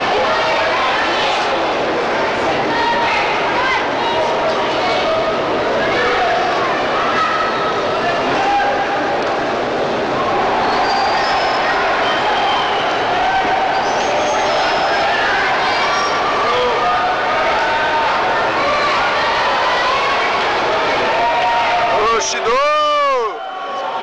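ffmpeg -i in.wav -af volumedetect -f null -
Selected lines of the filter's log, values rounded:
mean_volume: -15.7 dB
max_volume: -9.4 dB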